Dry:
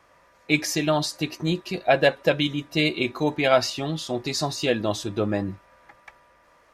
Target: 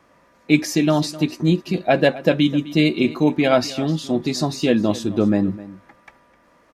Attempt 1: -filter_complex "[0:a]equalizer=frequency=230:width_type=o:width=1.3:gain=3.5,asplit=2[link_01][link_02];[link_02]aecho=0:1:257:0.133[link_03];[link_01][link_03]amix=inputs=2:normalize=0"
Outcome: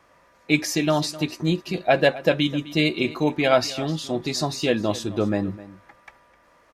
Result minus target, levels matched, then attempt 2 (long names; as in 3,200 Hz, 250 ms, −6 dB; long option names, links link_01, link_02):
250 Hz band −3.0 dB
-filter_complex "[0:a]equalizer=frequency=230:width_type=o:width=1.3:gain=12,asplit=2[link_01][link_02];[link_02]aecho=0:1:257:0.133[link_03];[link_01][link_03]amix=inputs=2:normalize=0"